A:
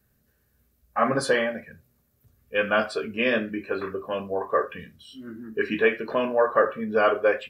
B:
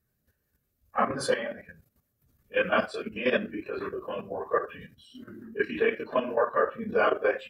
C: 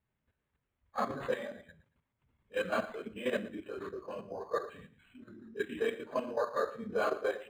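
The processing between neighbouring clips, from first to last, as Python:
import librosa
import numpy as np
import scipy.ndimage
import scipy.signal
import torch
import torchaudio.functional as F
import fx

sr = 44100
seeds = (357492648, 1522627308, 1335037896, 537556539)

y1 = fx.phase_scramble(x, sr, seeds[0], window_ms=50)
y1 = fx.level_steps(y1, sr, step_db=11)
y2 = fx.echo_feedback(y1, sr, ms=115, feedback_pct=26, wet_db=-17.0)
y2 = np.interp(np.arange(len(y2)), np.arange(len(y2))[::8], y2[::8])
y2 = F.gain(torch.from_numpy(y2), -7.0).numpy()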